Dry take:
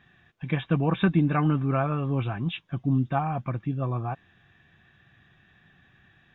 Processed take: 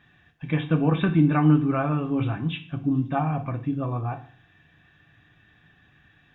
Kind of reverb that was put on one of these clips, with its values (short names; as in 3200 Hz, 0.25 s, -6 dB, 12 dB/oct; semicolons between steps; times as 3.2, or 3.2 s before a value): FDN reverb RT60 0.47 s, low-frequency decay 1.25×, high-frequency decay 1×, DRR 5.5 dB